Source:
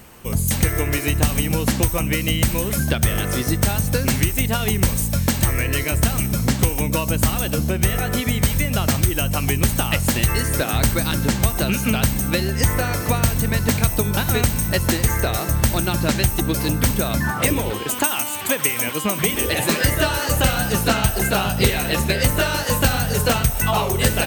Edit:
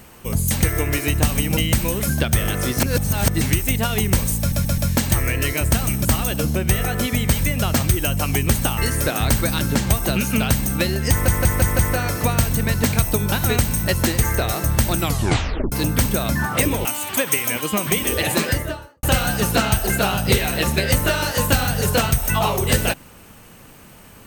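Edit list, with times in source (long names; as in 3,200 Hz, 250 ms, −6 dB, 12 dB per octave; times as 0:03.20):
0:01.57–0:02.27: remove
0:03.50–0:04.11: reverse
0:05.09: stutter 0.13 s, 4 plays
0:06.36–0:07.19: remove
0:09.92–0:10.31: remove
0:12.64: stutter 0.17 s, 5 plays
0:15.83: tape stop 0.74 s
0:17.70–0:18.17: remove
0:19.64–0:20.35: fade out and dull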